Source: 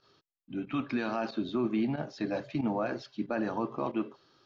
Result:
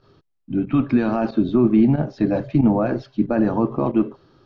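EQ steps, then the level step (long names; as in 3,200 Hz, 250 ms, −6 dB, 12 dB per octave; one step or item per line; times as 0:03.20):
spectral tilt −3.5 dB per octave
+7.5 dB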